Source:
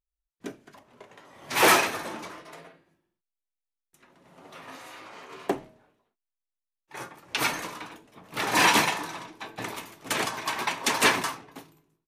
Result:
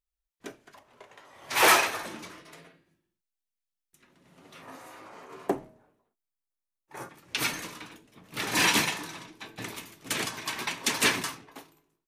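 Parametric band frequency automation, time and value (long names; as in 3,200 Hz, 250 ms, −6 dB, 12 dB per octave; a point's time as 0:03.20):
parametric band −8.5 dB 1.9 octaves
200 Hz
from 0:02.06 780 Hz
from 0:04.62 3,300 Hz
from 0:07.09 820 Hz
from 0:11.47 140 Hz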